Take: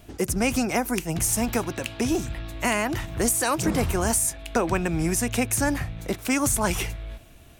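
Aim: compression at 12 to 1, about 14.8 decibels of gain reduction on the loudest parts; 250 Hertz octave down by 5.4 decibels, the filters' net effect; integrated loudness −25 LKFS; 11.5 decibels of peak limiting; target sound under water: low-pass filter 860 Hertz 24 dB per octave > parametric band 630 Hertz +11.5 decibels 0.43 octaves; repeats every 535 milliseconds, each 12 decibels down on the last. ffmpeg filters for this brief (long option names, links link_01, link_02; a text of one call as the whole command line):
ffmpeg -i in.wav -af "equalizer=frequency=250:width_type=o:gain=-7.5,acompressor=threshold=-35dB:ratio=12,alimiter=level_in=8dB:limit=-24dB:level=0:latency=1,volume=-8dB,lowpass=frequency=860:width=0.5412,lowpass=frequency=860:width=1.3066,equalizer=frequency=630:width_type=o:width=0.43:gain=11.5,aecho=1:1:535|1070|1605:0.251|0.0628|0.0157,volume=16.5dB" out.wav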